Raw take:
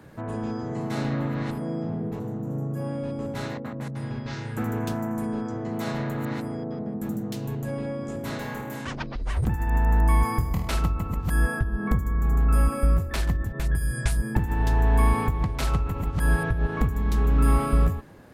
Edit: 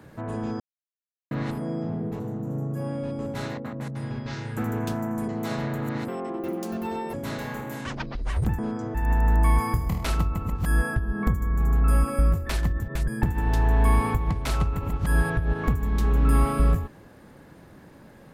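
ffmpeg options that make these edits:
-filter_complex "[0:a]asplit=9[a][b][c][d][e][f][g][h][i];[a]atrim=end=0.6,asetpts=PTS-STARTPTS,afade=t=out:st=0.596:d=0.004:c=hsin[j];[b]atrim=start=0.6:end=1.31,asetpts=PTS-STARTPTS,volume=0[k];[c]atrim=start=1.31:end=5.282,asetpts=PTS-STARTPTS,afade=t=in:d=0.004:c=hsin[l];[d]atrim=start=5.638:end=6.444[m];[e]atrim=start=6.44:end=8.14,asetpts=PTS-STARTPTS,asetrate=71001,aresample=44100,atrim=end_sample=46565,asetpts=PTS-STARTPTS[n];[f]atrim=start=8.136:end=9.592[o];[g]atrim=start=5.278:end=5.642[p];[h]atrim=start=9.588:end=13.722[q];[i]atrim=start=14.208[r];[j][k][l]concat=n=3:v=0:a=1[s];[s][m]acrossfade=d=0.004:c1=hsin:c2=hsin[t];[t][n]acrossfade=d=0.004:c1=hsin:c2=hsin[u];[u][o]acrossfade=d=0.004:c1=hsin:c2=hsin[v];[v][p]acrossfade=d=0.004:c1=hsin:c2=hsin[w];[w][q]acrossfade=d=0.004:c1=hsin:c2=hsin[x];[x][r]acrossfade=d=0.004:c1=hsin:c2=hsin"

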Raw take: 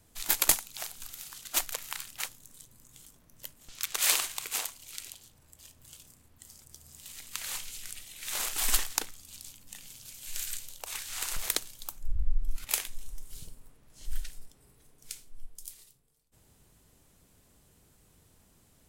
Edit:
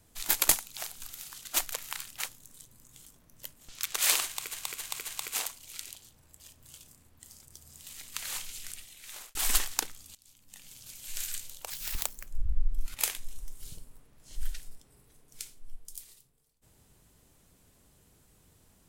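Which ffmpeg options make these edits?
-filter_complex "[0:a]asplit=8[a][b][c][d][e][f][g][h];[a]atrim=end=4.542[i];[b]atrim=start=4.268:end=4.542[j];[c]atrim=start=4.268:end=4.542[k];[d]atrim=start=4.268:end=8.54,asetpts=PTS-STARTPTS,afade=t=out:st=3.602:d=0.67[l];[e]atrim=start=8.54:end=9.34,asetpts=PTS-STARTPTS,afade=t=in:d=0.004:c=hsin,afade=t=out:st=0.796:d=0.004:c=hsin:silence=0.0749894[m];[f]atrim=start=9.34:end=10.894,asetpts=PTS-STARTPTS,afade=t=in:d=0.74:silence=0.0749894[n];[g]atrim=start=10.89:end=11.97,asetpts=PTS-STARTPTS,asetrate=83790,aresample=44100,atrim=end_sample=25067,asetpts=PTS-STARTPTS[o];[h]atrim=start=11.966[p];[i][j]acrossfade=d=0.004:c1=hsin:c2=hsin[q];[q][k]acrossfade=d=0.004:c1=hsin:c2=hsin[r];[l][m][n]concat=n=3:v=0:a=1[s];[r][s]acrossfade=d=0.004:c1=hsin:c2=hsin[t];[t][o]acrossfade=d=0.004:c1=hsin:c2=hsin[u];[u][p]acrossfade=d=0.004:c1=hsin:c2=hsin"

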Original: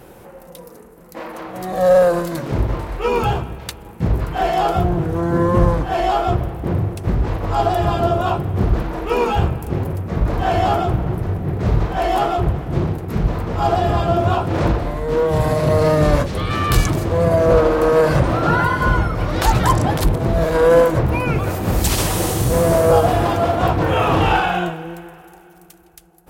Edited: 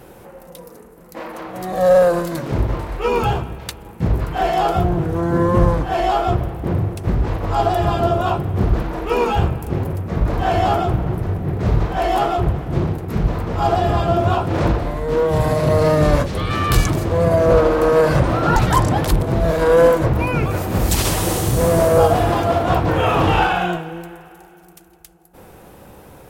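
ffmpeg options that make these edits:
-filter_complex "[0:a]asplit=2[a][b];[a]atrim=end=18.562[c];[b]atrim=start=19.488[d];[c][d]acrossfade=d=0.004:c1=hsin:c2=hsin"

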